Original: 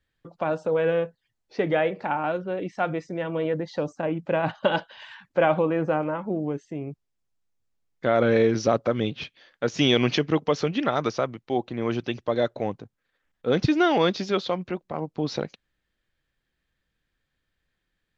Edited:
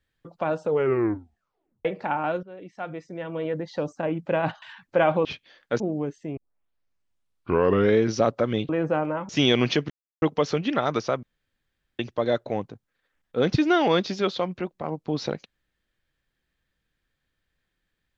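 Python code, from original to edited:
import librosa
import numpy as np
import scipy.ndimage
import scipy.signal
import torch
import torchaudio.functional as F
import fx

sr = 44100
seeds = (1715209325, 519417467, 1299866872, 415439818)

y = fx.edit(x, sr, fx.tape_stop(start_s=0.66, length_s=1.19),
    fx.fade_in_from(start_s=2.43, length_s=1.51, floor_db=-15.5),
    fx.cut(start_s=4.62, length_s=0.42),
    fx.swap(start_s=5.67, length_s=0.6, other_s=9.16, other_length_s=0.55),
    fx.tape_start(start_s=6.84, length_s=1.64),
    fx.insert_silence(at_s=10.32, length_s=0.32),
    fx.room_tone_fill(start_s=11.33, length_s=0.76), tone=tone)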